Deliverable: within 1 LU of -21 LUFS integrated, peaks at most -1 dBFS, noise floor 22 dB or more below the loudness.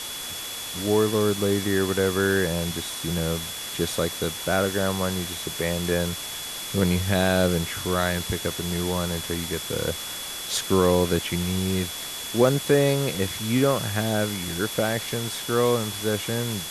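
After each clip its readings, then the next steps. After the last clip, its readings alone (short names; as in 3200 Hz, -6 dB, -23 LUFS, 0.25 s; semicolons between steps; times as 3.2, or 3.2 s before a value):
steady tone 3400 Hz; tone level -36 dBFS; noise floor -34 dBFS; noise floor target -47 dBFS; loudness -24.5 LUFS; peak -6.0 dBFS; loudness target -21.0 LUFS
-> notch 3400 Hz, Q 30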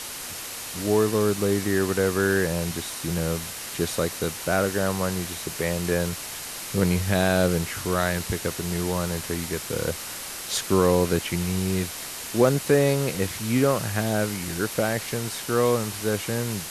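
steady tone none; noise floor -36 dBFS; noise floor target -47 dBFS
-> denoiser 11 dB, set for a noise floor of -36 dBFS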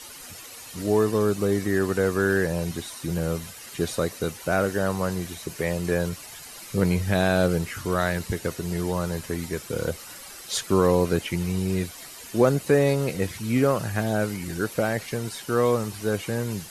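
noise floor -42 dBFS; noise floor target -48 dBFS
-> denoiser 6 dB, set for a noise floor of -42 dBFS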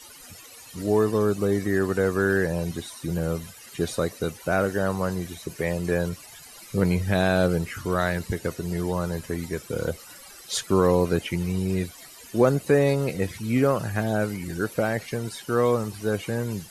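noise floor -46 dBFS; noise floor target -48 dBFS
-> denoiser 6 dB, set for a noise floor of -46 dBFS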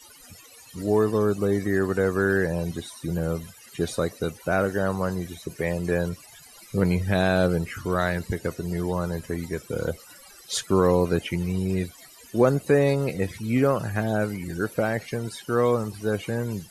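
noise floor -49 dBFS; loudness -25.5 LUFS; peak -7.0 dBFS; loudness target -21.0 LUFS
-> gain +4.5 dB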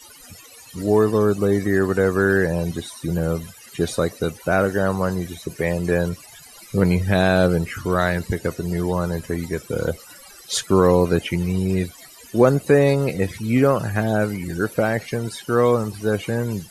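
loudness -21.0 LUFS; peak -2.5 dBFS; noise floor -45 dBFS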